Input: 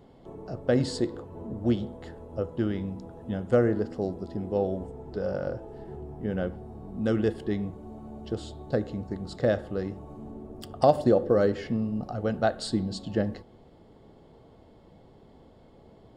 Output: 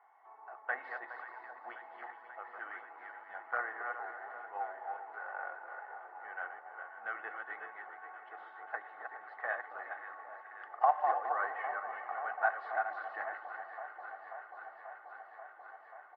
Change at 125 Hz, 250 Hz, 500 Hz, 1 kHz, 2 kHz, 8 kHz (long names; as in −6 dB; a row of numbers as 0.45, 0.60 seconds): below −40 dB, below −35 dB, −17.0 dB, +1.0 dB, +4.0 dB, can't be measured